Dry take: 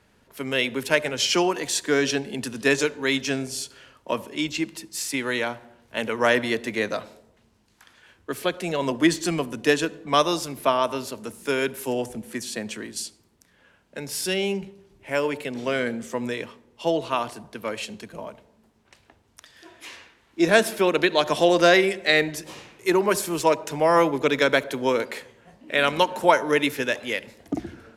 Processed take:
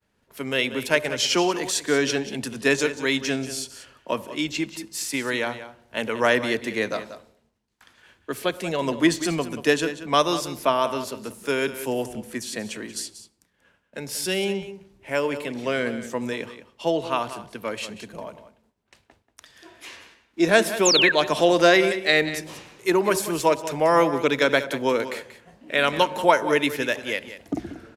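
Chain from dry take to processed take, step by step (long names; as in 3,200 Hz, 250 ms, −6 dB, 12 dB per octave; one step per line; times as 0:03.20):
downward expander −53 dBFS
single-tap delay 185 ms −13 dB
sound drawn into the spectrogram fall, 0:20.85–0:21.12, 1,500–7,700 Hz −19 dBFS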